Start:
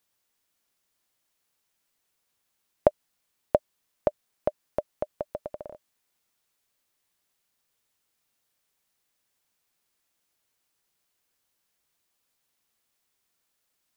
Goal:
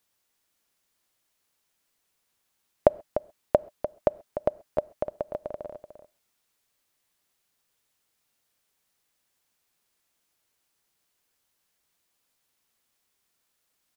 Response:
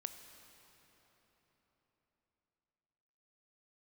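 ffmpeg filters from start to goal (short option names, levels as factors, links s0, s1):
-filter_complex "[0:a]asplit=2[s0][s1];[s1]adelay=297.4,volume=0.316,highshelf=f=4000:g=-6.69[s2];[s0][s2]amix=inputs=2:normalize=0,asplit=2[s3][s4];[1:a]atrim=start_sample=2205,atrim=end_sample=3969,asetrate=28224,aresample=44100[s5];[s4][s5]afir=irnorm=-1:irlink=0,volume=0.376[s6];[s3][s6]amix=inputs=2:normalize=0,volume=0.891"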